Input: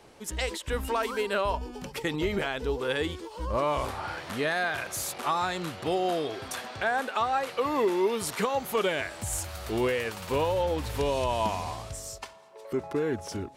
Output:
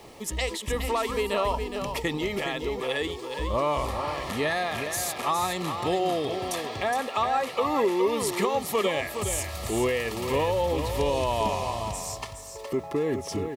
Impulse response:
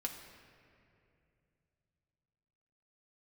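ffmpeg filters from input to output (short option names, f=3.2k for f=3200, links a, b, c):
-filter_complex "[0:a]asuperstop=centerf=1500:order=8:qfactor=5.5,acrusher=bits=10:mix=0:aa=0.000001,asplit=2[a][b];[b]acompressor=threshold=-41dB:ratio=6,volume=1dB[c];[a][c]amix=inputs=2:normalize=0,asettb=1/sr,asplit=3[d][e][f];[d]atrim=end=2.174[g];[e]atrim=start=2.17:end=3.29,asetpts=PTS-STARTPTS,afade=t=in:d=0.004:c=qsin,afade=t=out:st=1.116:d=0.004:c=qsin,lowshelf=f=270:g=-7.5[h];[f]atrim=start=3.286[i];[g][h]acrossfade=d=0.004:c1=hsin:c2=qsin[j];[j][i]acrossfade=d=0.004:c1=qsin:c2=hsin,aecho=1:1:416:0.422"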